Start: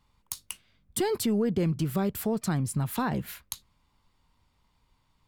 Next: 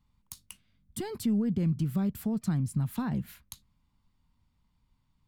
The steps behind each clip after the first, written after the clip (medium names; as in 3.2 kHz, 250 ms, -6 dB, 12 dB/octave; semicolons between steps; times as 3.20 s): resonant low shelf 300 Hz +7.5 dB, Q 1.5; trim -9 dB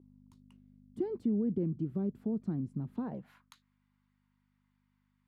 hum 50 Hz, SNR 15 dB; band-pass sweep 350 Hz -> 1.7 kHz, 2.96–3.58 s; trim +4.5 dB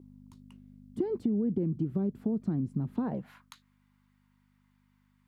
compression 5:1, threshold -33 dBFS, peak gain reduction 6.5 dB; trim +7 dB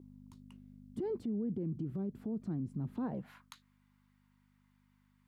peak limiter -28.5 dBFS, peak gain reduction 10 dB; trim -2 dB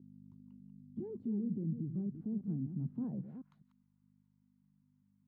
chunks repeated in reverse 201 ms, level -9 dB; band-pass filter 180 Hz, Q 1.5; trim +1.5 dB